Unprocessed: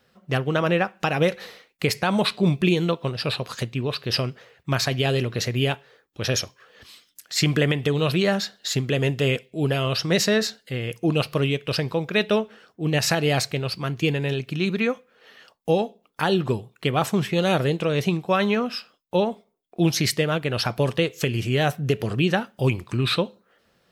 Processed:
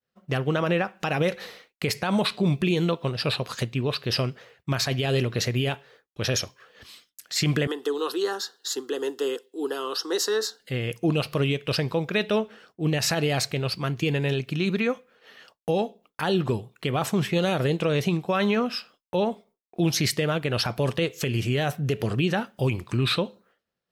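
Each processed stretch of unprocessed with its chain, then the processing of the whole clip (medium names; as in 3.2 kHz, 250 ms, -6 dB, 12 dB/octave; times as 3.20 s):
7.67–10.60 s: high-pass 310 Hz 24 dB/octave + static phaser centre 620 Hz, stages 6
whole clip: expander -50 dBFS; peak limiter -14.5 dBFS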